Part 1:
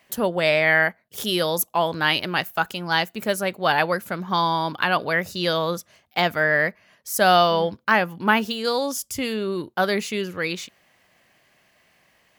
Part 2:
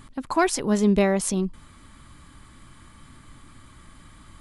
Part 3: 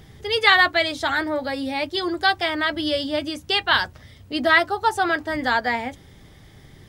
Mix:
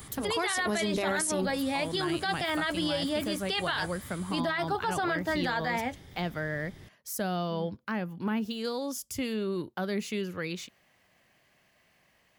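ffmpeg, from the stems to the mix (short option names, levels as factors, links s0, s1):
-filter_complex "[0:a]lowshelf=f=200:g=4.5,acrossover=split=360[s0][s1];[s1]acompressor=threshold=0.0398:ratio=5[s2];[s0][s2]amix=inputs=2:normalize=0,volume=0.501[s3];[1:a]aemphasis=mode=production:type=bsi,bandreject=f=100.4:t=h:w=4,bandreject=f=200.8:t=h:w=4,bandreject=f=301.2:t=h:w=4,bandreject=f=401.6:t=h:w=4,bandreject=f=502:t=h:w=4,bandreject=f=602.4:t=h:w=4,bandreject=f=702.8:t=h:w=4,bandreject=f=803.2:t=h:w=4,bandreject=f=903.6:t=h:w=4,bandreject=f=1004:t=h:w=4,bandreject=f=1104.4:t=h:w=4,bandreject=f=1204.8:t=h:w=4,bandreject=f=1305.2:t=h:w=4,bandreject=f=1405.6:t=h:w=4,bandreject=f=1506:t=h:w=4,bandreject=f=1606.4:t=h:w=4,bandreject=f=1706.8:t=h:w=4,bandreject=f=1807.2:t=h:w=4,bandreject=f=1907.6:t=h:w=4,bandreject=f=2008:t=h:w=4,bandreject=f=2108.4:t=h:w=4,bandreject=f=2208.8:t=h:w=4,bandreject=f=2309.2:t=h:w=4,bandreject=f=2409.6:t=h:w=4,bandreject=f=2510:t=h:w=4,bandreject=f=2610.4:t=h:w=4,bandreject=f=2710.8:t=h:w=4,volume=1,asplit=2[s4][s5];[2:a]volume=0.708[s6];[s5]apad=whole_len=545976[s7];[s3][s7]sidechaincompress=threshold=0.0158:ratio=8:attack=16:release=405[s8];[s8][s4][s6]amix=inputs=3:normalize=0,alimiter=limit=0.0891:level=0:latency=1:release=18"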